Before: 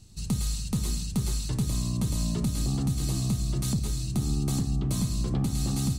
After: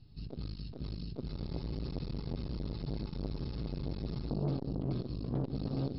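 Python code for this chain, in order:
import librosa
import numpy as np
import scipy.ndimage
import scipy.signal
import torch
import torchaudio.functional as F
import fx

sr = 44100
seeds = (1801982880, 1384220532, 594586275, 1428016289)

p1 = fx.brickwall_lowpass(x, sr, high_hz=5400.0)
p2 = fx.tilt_shelf(p1, sr, db=3.5, hz=970.0)
p3 = p2 + 0.46 * np.pad(p2, (int(7.1 * sr / 1000.0), 0))[:len(p2)]
p4 = p3 + fx.echo_feedback(p3, sr, ms=63, feedback_pct=59, wet_db=-14, dry=0)
p5 = fx.spec_freeze(p4, sr, seeds[0], at_s=1.31, hold_s=2.97)
p6 = fx.transformer_sat(p5, sr, knee_hz=360.0)
y = p6 * librosa.db_to_amplitude(-7.5)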